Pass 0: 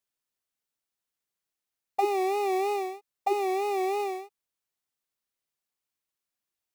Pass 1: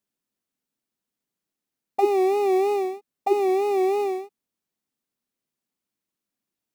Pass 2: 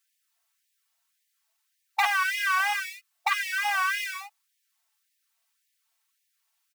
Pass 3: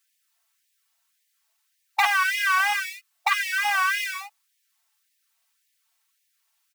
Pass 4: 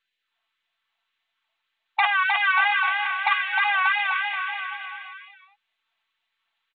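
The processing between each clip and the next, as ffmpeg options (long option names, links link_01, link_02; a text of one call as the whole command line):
ffmpeg -i in.wav -af "equalizer=frequency=230:width=0.86:gain=14.5" out.wav
ffmpeg -i in.wav -filter_complex "[0:a]asplit=2[link_01][link_02];[link_02]aeval=exprs='0.376*sin(PI/2*4.47*val(0)/0.376)':channel_layout=same,volume=-6.5dB[link_03];[link_01][link_03]amix=inputs=2:normalize=0,aecho=1:1:4.5:0.75,afftfilt=real='re*gte(b*sr/1024,620*pow(1700/620,0.5+0.5*sin(2*PI*1.8*pts/sr)))':imag='im*gte(b*sr/1024,620*pow(1700/620,0.5+0.5*sin(2*PI*1.8*pts/sr)))':win_size=1024:overlap=0.75,volume=-3dB" out.wav
ffmpeg -i in.wav -af "highpass=560,volume=3.5dB" out.wav
ffmpeg -i in.wav -af "aecho=1:1:310|589|840.1|1066|1269:0.631|0.398|0.251|0.158|0.1,aresample=8000,aresample=44100" -ar 16000 -c:a mp2 -b:a 64k out.mp2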